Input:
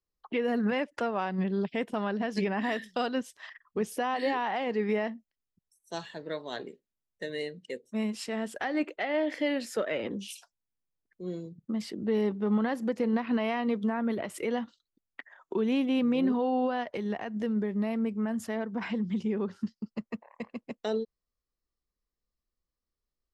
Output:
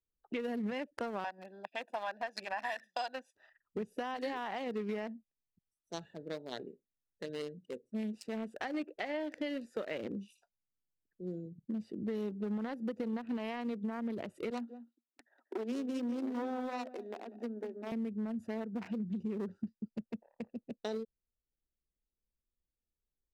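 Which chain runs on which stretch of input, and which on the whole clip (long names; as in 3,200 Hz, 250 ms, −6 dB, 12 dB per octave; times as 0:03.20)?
0:01.24–0:03.35: high-pass filter 430 Hz 24 dB per octave + comb filter 1.2 ms, depth 89%
0:14.50–0:17.92: phase distortion by the signal itself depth 0.24 ms + Chebyshev high-pass with heavy ripple 230 Hz, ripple 3 dB + single-tap delay 191 ms −11.5 dB
whole clip: adaptive Wiener filter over 41 samples; high-shelf EQ 5,600 Hz +11 dB; downward compressor, threshold −31 dBFS; level −2.5 dB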